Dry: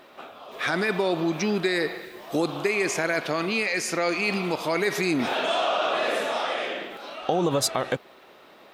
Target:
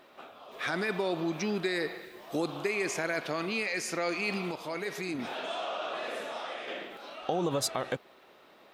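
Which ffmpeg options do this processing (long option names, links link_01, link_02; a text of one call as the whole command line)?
ffmpeg -i in.wav -filter_complex "[0:a]asettb=1/sr,asplit=3[link_01][link_02][link_03];[link_01]atrim=end=4.514[link_04];[link_02]atrim=start=4.51:end=6.68,asetpts=PTS-STARTPTS,afade=type=in:duration=0.004:curve=qsin,afade=type=out:start_time=2.166:duration=0.004:curve=qsin,flanger=delay=0.8:depth=9.1:regen=-82:speed=1.9:shape=sinusoidal[link_05];[link_03]atrim=start=6.676[link_06];[link_04][link_05]acrossfade=duration=0.004:curve1=hsin:curve2=qsin[link_07];[link_07][link_06]acrossfade=duration=0.004:curve1=qsin:curve2=hsin,volume=-6.5dB" out.wav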